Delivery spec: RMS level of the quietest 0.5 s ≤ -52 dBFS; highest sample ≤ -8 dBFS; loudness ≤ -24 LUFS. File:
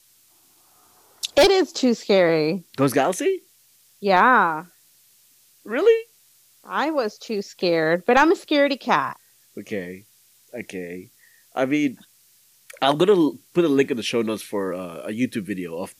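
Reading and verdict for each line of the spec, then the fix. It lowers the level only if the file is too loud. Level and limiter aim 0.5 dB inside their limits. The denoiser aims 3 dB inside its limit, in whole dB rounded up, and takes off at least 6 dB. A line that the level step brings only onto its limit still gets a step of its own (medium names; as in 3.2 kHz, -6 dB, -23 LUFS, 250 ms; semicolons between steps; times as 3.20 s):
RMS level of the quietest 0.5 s -57 dBFS: pass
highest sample -4.0 dBFS: fail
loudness -21.0 LUFS: fail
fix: trim -3.5 dB; peak limiter -8.5 dBFS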